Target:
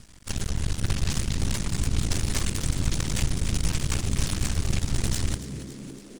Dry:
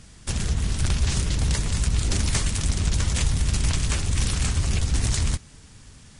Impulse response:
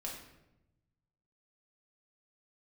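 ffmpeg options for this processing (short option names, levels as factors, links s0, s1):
-filter_complex "[0:a]aeval=exprs='max(val(0),0)':c=same,asplit=8[s0][s1][s2][s3][s4][s5][s6][s7];[s1]adelay=280,afreqshift=67,volume=0.211[s8];[s2]adelay=560,afreqshift=134,volume=0.133[s9];[s3]adelay=840,afreqshift=201,volume=0.0841[s10];[s4]adelay=1120,afreqshift=268,volume=0.0531[s11];[s5]adelay=1400,afreqshift=335,volume=0.0331[s12];[s6]adelay=1680,afreqshift=402,volume=0.0209[s13];[s7]adelay=1960,afreqshift=469,volume=0.0132[s14];[s0][s8][s9][s10][s11][s12][s13][s14]amix=inputs=8:normalize=0"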